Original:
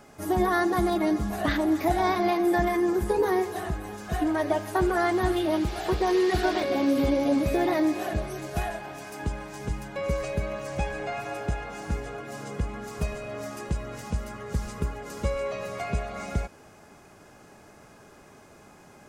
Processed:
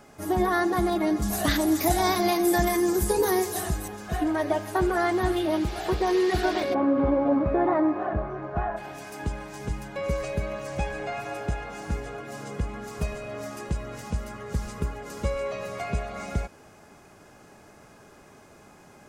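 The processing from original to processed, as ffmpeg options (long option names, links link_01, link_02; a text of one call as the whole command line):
ffmpeg -i in.wav -filter_complex "[0:a]asettb=1/sr,asplit=3[link_01][link_02][link_03];[link_01]atrim=end=1.224[link_04];[link_02]atrim=start=1.22:end=3.88,asetpts=PTS-STARTPTS,afade=type=in:duration=0.004:curve=qsin,afade=type=out:start_time=2.656:duration=0.004:curve=qsin,bass=frequency=250:gain=3,treble=frequency=4000:gain=15[link_05];[link_03]atrim=start=3.876[link_06];[link_04][link_05]acrossfade=duration=0.004:curve1=hsin:curve2=qsin[link_07];[link_07][link_06]acrossfade=duration=0.004:curve1=qsin:curve2=hsin,asplit=3[link_08][link_09][link_10];[link_08]afade=type=out:start_time=6.73:duration=0.02[link_11];[link_09]lowpass=frequency=1200:width_type=q:width=2,afade=type=in:start_time=6.73:duration=0.02,afade=type=out:start_time=8.76:duration=0.02[link_12];[link_10]afade=type=in:start_time=8.76:duration=0.02[link_13];[link_11][link_12][link_13]amix=inputs=3:normalize=0" out.wav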